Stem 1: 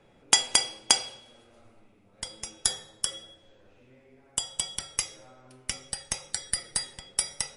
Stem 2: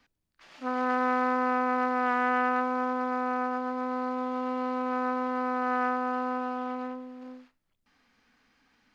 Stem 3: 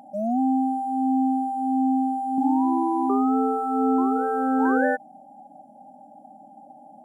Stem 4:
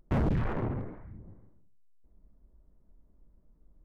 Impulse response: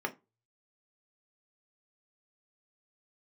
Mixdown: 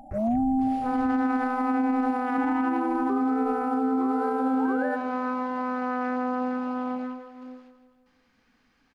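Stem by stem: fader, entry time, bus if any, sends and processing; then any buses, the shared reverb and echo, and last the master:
muted
−1.5 dB, 0.20 s, no send, echo send −10.5 dB, no processing
−2.5 dB, 0.00 s, no send, echo send −18.5 dB, no processing
−0.5 dB, 0.00 s, no send, echo send −12.5 dB, two-band tremolo in antiphase 2 Hz, depth 100%, crossover 420 Hz; downward compressor, threshold −37 dBFS, peak gain reduction 9 dB; step-sequenced phaser 11 Hz 340–1,800 Hz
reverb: not used
echo: repeating echo 163 ms, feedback 53%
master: low-shelf EQ 360 Hz +6 dB; brickwall limiter −17.5 dBFS, peak gain reduction 9 dB

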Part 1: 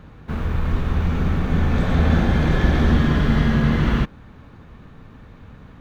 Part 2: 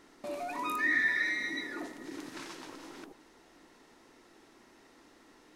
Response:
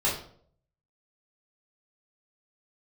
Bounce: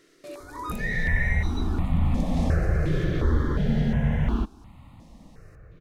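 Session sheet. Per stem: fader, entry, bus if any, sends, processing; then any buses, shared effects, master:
−6.0 dB, 0.40 s, no send, tilt shelving filter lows +3.5 dB, about 1,200 Hz
+2.5 dB, 0.00 s, no send, no processing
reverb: not used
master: step-sequenced phaser 2.8 Hz 230–1,600 Hz

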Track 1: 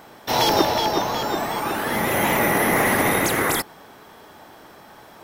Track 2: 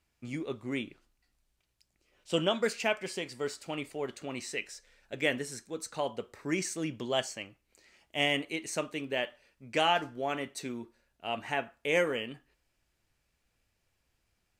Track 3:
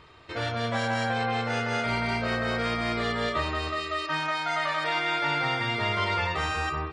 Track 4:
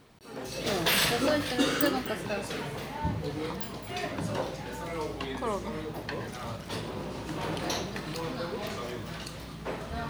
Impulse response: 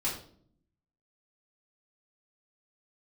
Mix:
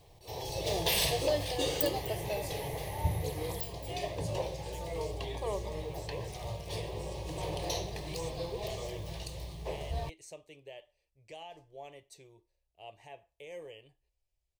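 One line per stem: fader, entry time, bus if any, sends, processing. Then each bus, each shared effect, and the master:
−18.0 dB, 0.00 s, no send, downward compressor 2 to 1, threshold −23 dBFS, peak gain reduction 6.5 dB; parametric band 99 Hz +14 dB 0.77 octaves
−12.5 dB, 1.55 s, no send, brickwall limiter −21 dBFS, peak gain reduction 8.5 dB
−19.0 dB, 1.25 s, no send, vocoder with an arpeggio as carrier major triad, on F#3, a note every 510 ms
−1.5 dB, 0.00 s, no send, no processing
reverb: not used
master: low-shelf EQ 100 Hz +11 dB; phaser with its sweep stopped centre 580 Hz, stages 4

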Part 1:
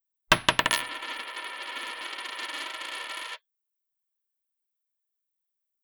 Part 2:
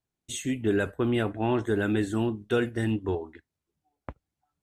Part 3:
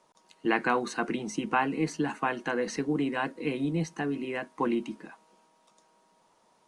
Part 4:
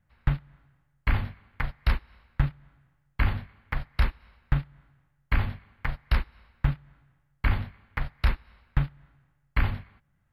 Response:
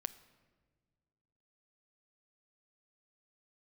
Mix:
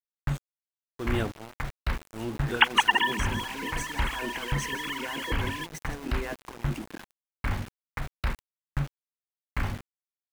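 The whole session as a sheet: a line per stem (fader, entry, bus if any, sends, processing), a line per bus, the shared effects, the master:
+0.5 dB, 2.30 s, no bus, no send, no echo send, three sine waves on the formant tracks
−6.0 dB, 0.00 s, no bus, send −5.5 dB, echo send −20.5 dB, tremolo with a sine in dB 0.84 Hz, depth 31 dB
−2.0 dB, 1.90 s, bus A, send −12 dB, echo send −13.5 dB, parametric band 4,400 Hz −14.5 dB 0.74 octaves; compressor whose output falls as the input rises −37 dBFS, ratio −1
+0.5 dB, 0.00 s, bus A, send −10.5 dB, no echo send, high-shelf EQ 2,200 Hz −8.5 dB
bus A: 0.0 dB, low-shelf EQ 100 Hz −11 dB; brickwall limiter −22.5 dBFS, peak gain reduction 7 dB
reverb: on, pre-delay 7 ms
echo: repeating echo 162 ms, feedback 43%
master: high-shelf EQ 3,900 Hz +4 dB; centre clipping without the shift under −37.5 dBFS

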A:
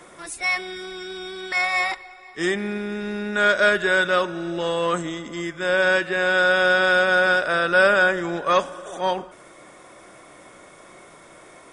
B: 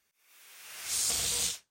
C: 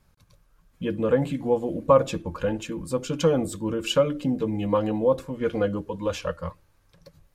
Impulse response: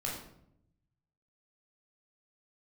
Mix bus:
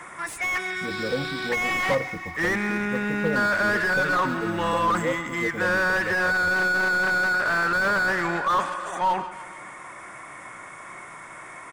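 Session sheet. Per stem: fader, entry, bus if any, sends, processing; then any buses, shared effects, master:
−1.0 dB, 0.00 s, no send, echo send −18.5 dB, octave-band graphic EQ 125/500/1,000/2,000/4,000/8,000 Hz +5/−5/+9/+11/−7/+5 dB; soft clipping −14.5 dBFS, distortion −8 dB
+1.0 dB, 0.00 s, no send, no echo send, Chebyshev low-pass with heavy ripple 5,300 Hz, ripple 9 dB
−6.5 dB, 0.00 s, no send, no echo send, low-pass filter 1,100 Hz; bit reduction 8 bits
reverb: not used
echo: repeating echo 155 ms, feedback 58%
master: slew-rate limiting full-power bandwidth 120 Hz

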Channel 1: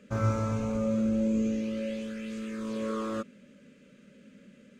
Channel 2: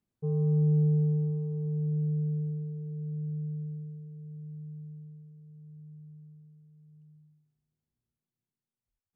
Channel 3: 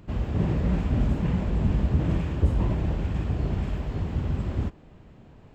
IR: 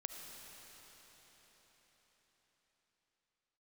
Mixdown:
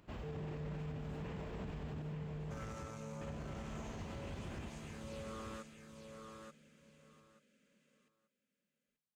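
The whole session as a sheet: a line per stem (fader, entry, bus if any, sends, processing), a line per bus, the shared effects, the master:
−10.0 dB, 2.40 s, no send, echo send −5 dB, soft clipping −28 dBFS, distortion −12 dB; high-shelf EQ 4,400 Hz +7.5 dB
−4.5 dB, 0.00 s, no send, echo send −18 dB, no processing
−10.0 dB, 0.00 s, muted 0:02.02–0:03.21, send −5 dB, echo send −5 dB, no processing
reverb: on, RT60 5.1 s, pre-delay 30 ms
echo: repeating echo 883 ms, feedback 19%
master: low-shelf EQ 310 Hz −12 dB; brickwall limiter −36.5 dBFS, peak gain reduction 10.5 dB

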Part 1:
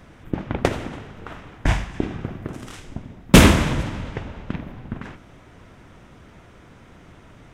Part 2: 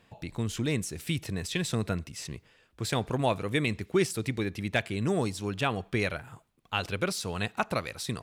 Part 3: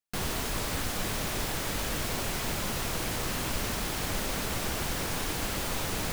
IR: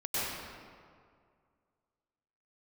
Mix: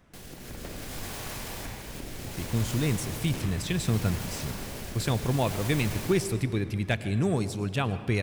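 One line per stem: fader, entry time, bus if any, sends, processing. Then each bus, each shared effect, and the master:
−13.5 dB, 0.00 s, bus A, no send, soft clipping −12.5 dBFS, distortion −7 dB
−8.0 dB, 2.15 s, no bus, send −19.5 dB, low-shelf EQ 190 Hz +10.5 dB
−3.5 dB, 0.00 s, bus A, send −10 dB, notch filter 1,300 Hz, Q 18; brickwall limiter −29.5 dBFS, peak gain reduction 11 dB; rotating-speaker cabinet horn 0.65 Hz
bus A: 0.0 dB, downward compressor, threshold −44 dBFS, peak gain reduction 15 dB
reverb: on, RT60 2.1 s, pre-delay 92 ms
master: automatic gain control gain up to 5 dB; high-shelf EQ 7,000 Hz +4.5 dB

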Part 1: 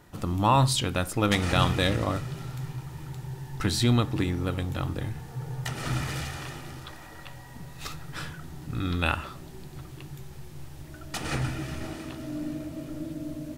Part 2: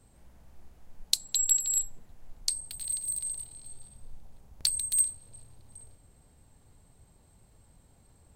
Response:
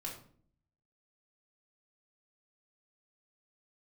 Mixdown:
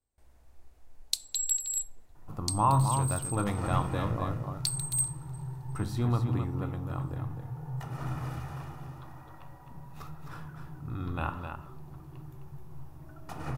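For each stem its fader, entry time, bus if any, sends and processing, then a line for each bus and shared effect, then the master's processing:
−12.0 dB, 2.15 s, send −5 dB, echo send −4.5 dB, octave-band graphic EQ 125/1,000/2,000/4,000/8,000 Hz +7/+9/−6/−8/−8 dB
−5.0 dB, 0.00 s, send −14 dB, no echo send, noise gate with hold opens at −48 dBFS; parametric band 170 Hz −14 dB 0.59 octaves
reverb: on, RT60 0.55 s, pre-delay 3 ms
echo: single-tap delay 260 ms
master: notch filter 3,100 Hz, Q 25

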